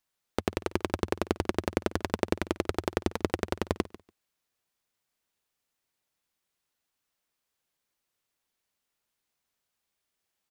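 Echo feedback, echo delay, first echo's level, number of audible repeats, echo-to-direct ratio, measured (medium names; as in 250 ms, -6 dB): 17%, 144 ms, -19.0 dB, 2, -19.0 dB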